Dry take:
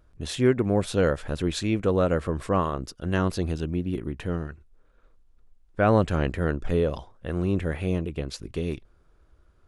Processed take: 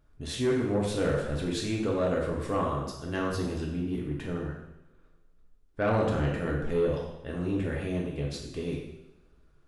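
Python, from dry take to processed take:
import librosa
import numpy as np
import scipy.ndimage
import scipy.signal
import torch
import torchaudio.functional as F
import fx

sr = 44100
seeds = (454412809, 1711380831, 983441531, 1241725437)

y = fx.rev_double_slope(x, sr, seeds[0], early_s=0.82, late_s=2.3, knee_db=-25, drr_db=-2.0)
y = 10.0 ** (-12.0 / 20.0) * np.tanh(y / 10.0 ** (-12.0 / 20.0))
y = y * librosa.db_to_amplitude(-6.5)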